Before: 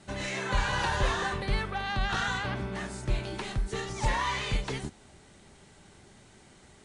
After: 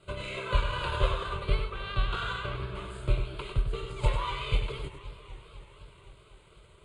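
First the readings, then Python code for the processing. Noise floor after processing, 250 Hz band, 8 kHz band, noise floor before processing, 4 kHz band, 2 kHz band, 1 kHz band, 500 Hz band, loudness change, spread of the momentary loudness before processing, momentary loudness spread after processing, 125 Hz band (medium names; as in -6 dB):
-57 dBFS, -6.5 dB, -12.5 dB, -56 dBFS, -2.0 dB, -5.5 dB, -3.5 dB, 0.0 dB, -1.5 dB, 7 LU, 17 LU, +1.0 dB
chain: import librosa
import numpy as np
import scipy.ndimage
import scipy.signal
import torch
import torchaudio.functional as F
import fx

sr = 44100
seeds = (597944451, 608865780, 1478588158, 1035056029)

p1 = fx.high_shelf(x, sr, hz=5500.0, db=-5.0)
p2 = fx.fixed_phaser(p1, sr, hz=1200.0, stages=8)
p3 = fx.transient(p2, sr, attack_db=5, sustain_db=-6)
p4 = p3 + fx.echo_single(p3, sr, ms=98, db=-7.0, dry=0)
y = fx.echo_warbled(p4, sr, ms=253, feedback_pct=75, rate_hz=2.8, cents=190, wet_db=-17.0)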